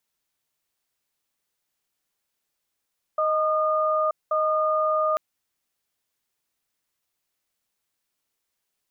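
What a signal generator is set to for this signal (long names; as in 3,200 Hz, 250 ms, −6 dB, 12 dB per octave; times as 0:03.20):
tone pair in a cadence 623 Hz, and 1,220 Hz, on 0.93 s, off 0.20 s, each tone −22.5 dBFS 1.99 s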